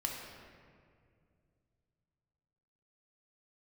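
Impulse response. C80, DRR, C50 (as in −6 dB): 3.0 dB, −1.0 dB, 1.5 dB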